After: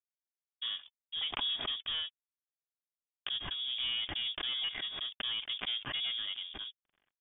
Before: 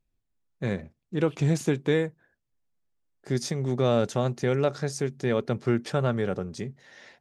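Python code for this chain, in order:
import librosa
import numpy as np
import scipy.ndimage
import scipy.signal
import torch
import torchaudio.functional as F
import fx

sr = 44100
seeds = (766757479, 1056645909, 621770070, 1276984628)

y = np.sign(x) * np.maximum(np.abs(x) - 10.0 ** (-43.0 / 20.0), 0.0)
y = fx.notch_comb(y, sr, f0_hz=430.0)
y = 10.0 ** (-24.5 / 20.0) * np.tanh(y / 10.0 ** (-24.5 / 20.0))
y = fx.freq_invert(y, sr, carrier_hz=3500)
y = fx.pre_swell(y, sr, db_per_s=57.0)
y = F.gain(torch.from_numpy(y), -6.0).numpy()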